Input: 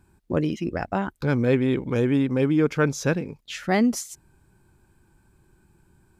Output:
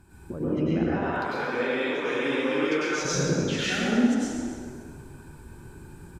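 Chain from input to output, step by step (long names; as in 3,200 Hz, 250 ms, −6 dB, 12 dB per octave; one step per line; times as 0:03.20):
0:00.82–0:02.98: high-pass filter 770 Hz 12 dB per octave
treble cut that deepens with the level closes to 1,000 Hz, closed at −19.5 dBFS
downward compressor, threshold −32 dBFS, peak gain reduction 14.5 dB
brickwall limiter −30 dBFS, peak gain reduction 9.5 dB
echo with shifted repeats 135 ms, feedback 52%, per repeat +32 Hz, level −9 dB
dense smooth reverb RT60 1.8 s, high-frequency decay 0.6×, pre-delay 85 ms, DRR −9.5 dB
level +4 dB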